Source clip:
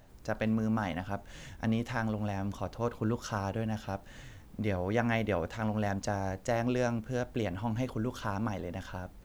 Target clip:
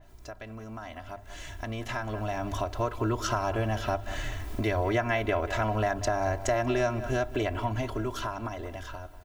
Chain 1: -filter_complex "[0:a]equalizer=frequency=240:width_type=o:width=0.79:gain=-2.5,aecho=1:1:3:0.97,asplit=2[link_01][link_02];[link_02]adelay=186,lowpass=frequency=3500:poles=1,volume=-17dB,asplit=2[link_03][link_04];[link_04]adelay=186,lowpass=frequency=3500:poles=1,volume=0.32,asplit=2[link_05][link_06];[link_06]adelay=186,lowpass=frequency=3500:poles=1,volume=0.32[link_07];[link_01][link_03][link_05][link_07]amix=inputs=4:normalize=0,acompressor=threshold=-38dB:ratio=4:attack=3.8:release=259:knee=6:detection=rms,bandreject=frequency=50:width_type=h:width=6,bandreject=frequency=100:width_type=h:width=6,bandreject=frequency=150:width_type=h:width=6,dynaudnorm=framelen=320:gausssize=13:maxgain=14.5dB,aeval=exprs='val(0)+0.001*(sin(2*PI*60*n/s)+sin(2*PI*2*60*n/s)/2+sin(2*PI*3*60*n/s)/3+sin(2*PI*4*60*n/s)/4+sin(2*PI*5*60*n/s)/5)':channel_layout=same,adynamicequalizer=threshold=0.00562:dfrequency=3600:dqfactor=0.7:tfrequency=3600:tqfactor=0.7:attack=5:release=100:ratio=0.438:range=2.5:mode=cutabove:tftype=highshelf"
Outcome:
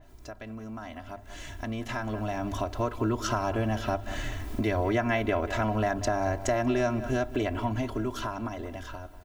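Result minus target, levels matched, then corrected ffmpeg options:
250 Hz band +3.0 dB
-filter_complex "[0:a]equalizer=frequency=240:width_type=o:width=0.79:gain=-9.5,aecho=1:1:3:0.97,asplit=2[link_01][link_02];[link_02]adelay=186,lowpass=frequency=3500:poles=1,volume=-17dB,asplit=2[link_03][link_04];[link_04]adelay=186,lowpass=frequency=3500:poles=1,volume=0.32,asplit=2[link_05][link_06];[link_06]adelay=186,lowpass=frequency=3500:poles=1,volume=0.32[link_07];[link_01][link_03][link_05][link_07]amix=inputs=4:normalize=0,acompressor=threshold=-38dB:ratio=4:attack=3.8:release=259:knee=6:detection=rms,bandreject=frequency=50:width_type=h:width=6,bandreject=frequency=100:width_type=h:width=6,bandreject=frequency=150:width_type=h:width=6,dynaudnorm=framelen=320:gausssize=13:maxgain=14.5dB,aeval=exprs='val(0)+0.001*(sin(2*PI*60*n/s)+sin(2*PI*2*60*n/s)/2+sin(2*PI*3*60*n/s)/3+sin(2*PI*4*60*n/s)/4+sin(2*PI*5*60*n/s)/5)':channel_layout=same,adynamicequalizer=threshold=0.00562:dfrequency=3600:dqfactor=0.7:tfrequency=3600:tqfactor=0.7:attack=5:release=100:ratio=0.438:range=2.5:mode=cutabove:tftype=highshelf"

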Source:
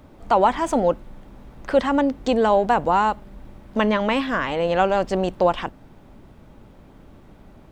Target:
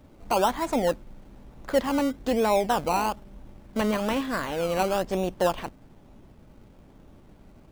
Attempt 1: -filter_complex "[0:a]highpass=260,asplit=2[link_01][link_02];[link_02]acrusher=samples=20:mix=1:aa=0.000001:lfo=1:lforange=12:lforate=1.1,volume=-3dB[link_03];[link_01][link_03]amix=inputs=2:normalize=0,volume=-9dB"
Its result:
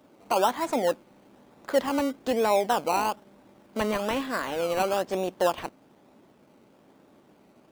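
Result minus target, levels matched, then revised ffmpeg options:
250 Hz band −2.5 dB
-filter_complex "[0:a]asplit=2[link_01][link_02];[link_02]acrusher=samples=20:mix=1:aa=0.000001:lfo=1:lforange=12:lforate=1.1,volume=-3dB[link_03];[link_01][link_03]amix=inputs=2:normalize=0,volume=-9dB"

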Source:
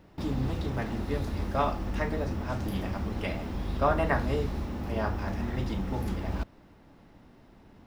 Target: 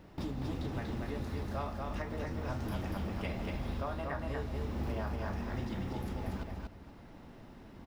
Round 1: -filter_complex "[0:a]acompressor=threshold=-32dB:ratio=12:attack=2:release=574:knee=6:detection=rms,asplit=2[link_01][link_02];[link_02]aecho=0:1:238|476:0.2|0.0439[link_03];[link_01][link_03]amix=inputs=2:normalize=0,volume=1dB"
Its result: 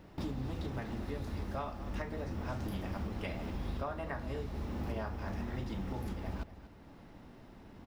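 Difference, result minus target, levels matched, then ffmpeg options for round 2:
echo-to-direct −11 dB
-filter_complex "[0:a]acompressor=threshold=-32dB:ratio=12:attack=2:release=574:knee=6:detection=rms,asplit=2[link_01][link_02];[link_02]aecho=0:1:238|476|714:0.708|0.156|0.0343[link_03];[link_01][link_03]amix=inputs=2:normalize=0,volume=1dB"

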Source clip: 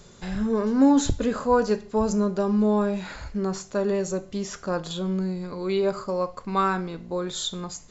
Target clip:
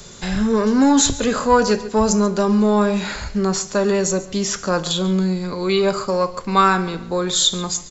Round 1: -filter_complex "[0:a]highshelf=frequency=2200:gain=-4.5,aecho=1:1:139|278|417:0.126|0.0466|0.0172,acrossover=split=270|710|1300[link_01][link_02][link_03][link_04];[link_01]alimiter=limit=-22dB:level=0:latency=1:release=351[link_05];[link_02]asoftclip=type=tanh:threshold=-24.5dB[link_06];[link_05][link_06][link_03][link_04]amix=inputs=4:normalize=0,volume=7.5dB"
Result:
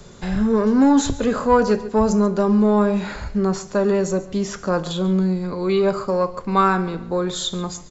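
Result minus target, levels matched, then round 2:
4,000 Hz band −7.5 dB
-filter_complex "[0:a]highshelf=frequency=2200:gain=7.5,aecho=1:1:139|278|417:0.126|0.0466|0.0172,acrossover=split=270|710|1300[link_01][link_02][link_03][link_04];[link_01]alimiter=limit=-22dB:level=0:latency=1:release=351[link_05];[link_02]asoftclip=type=tanh:threshold=-24.5dB[link_06];[link_05][link_06][link_03][link_04]amix=inputs=4:normalize=0,volume=7.5dB"

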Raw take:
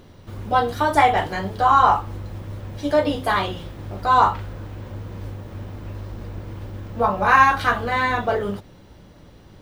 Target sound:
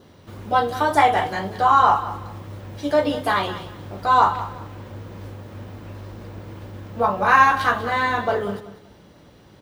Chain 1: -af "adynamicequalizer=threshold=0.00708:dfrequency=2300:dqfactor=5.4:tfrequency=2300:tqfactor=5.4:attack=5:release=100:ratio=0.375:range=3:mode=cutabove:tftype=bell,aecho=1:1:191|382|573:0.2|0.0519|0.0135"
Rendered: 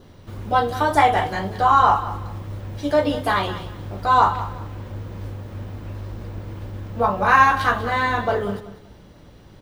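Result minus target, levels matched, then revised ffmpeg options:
125 Hz band +4.5 dB
-af "adynamicequalizer=threshold=0.00708:dfrequency=2300:dqfactor=5.4:tfrequency=2300:tqfactor=5.4:attack=5:release=100:ratio=0.375:range=3:mode=cutabove:tftype=bell,highpass=frequency=140:poles=1,aecho=1:1:191|382|573:0.2|0.0519|0.0135"

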